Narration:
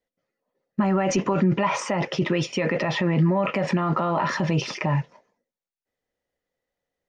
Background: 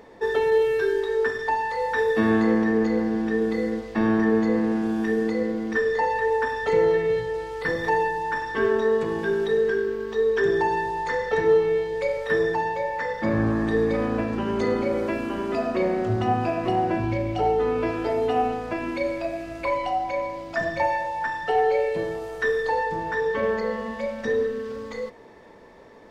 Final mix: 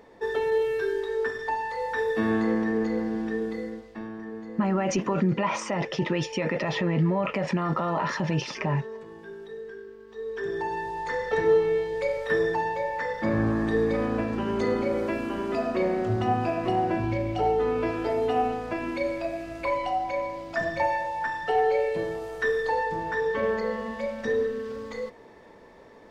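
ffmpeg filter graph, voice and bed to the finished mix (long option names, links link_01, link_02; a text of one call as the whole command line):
ffmpeg -i stem1.wav -i stem2.wav -filter_complex "[0:a]adelay=3800,volume=-3.5dB[link_01];[1:a]volume=11dB,afade=type=out:start_time=3.23:duration=0.87:silence=0.223872,afade=type=in:start_time=10.07:duration=1.35:silence=0.16788[link_02];[link_01][link_02]amix=inputs=2:normalize=0" out.wav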